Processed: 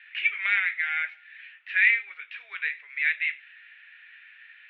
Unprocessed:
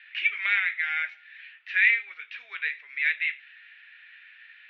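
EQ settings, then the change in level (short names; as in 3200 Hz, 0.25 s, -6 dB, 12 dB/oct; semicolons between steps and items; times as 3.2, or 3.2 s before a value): three-band isolator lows -14 dB, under 310 Hz, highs -19 dB, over 3500 Hz; high shelf 4300 Hz +6.5 dB; notches 50/100/150/200 Hz; 0.0 dB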